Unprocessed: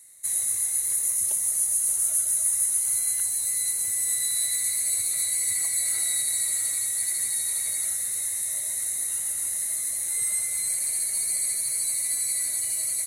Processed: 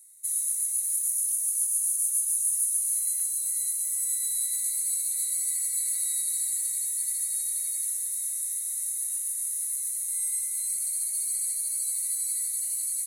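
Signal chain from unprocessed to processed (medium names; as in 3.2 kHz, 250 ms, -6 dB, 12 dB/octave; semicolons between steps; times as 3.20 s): differentiator; trim -4.5 dB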